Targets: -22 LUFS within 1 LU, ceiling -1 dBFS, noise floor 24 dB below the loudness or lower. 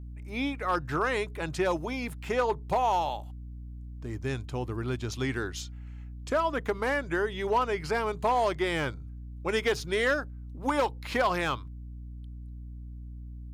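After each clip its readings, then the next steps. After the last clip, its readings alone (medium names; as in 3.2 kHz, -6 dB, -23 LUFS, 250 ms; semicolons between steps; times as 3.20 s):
clipped samples 0.4%; clipping level -19.0 dBFS; hum 60 Hz; highest harmonic 300 Hz; hum level -39 dBFS; loudness -30.0 LUFS; peak level -19.0 dBFS; loudness target -22.0 LUFS
-> clip repair -19 dBFS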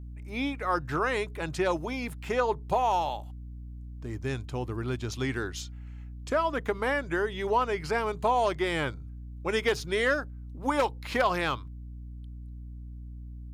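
clipped samples 0.0%; hum 60 Hz; highest harmonic 300 Hz; hum level -39 dBFS
-> de-hum 60 Hz, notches 5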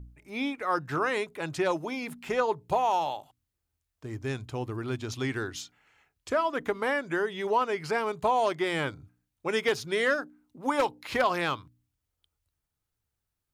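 hum not found; loudness -29.5 LUFS; peak level -11.0 dBFS; loudness target -22.0 LUFS
-> trim +7.5 dB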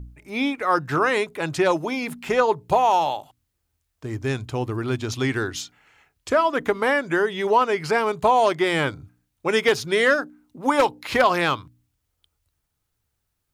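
loudness -22.0 LUFS; peak level -3.5 dBFS; noise floor -76 dBFS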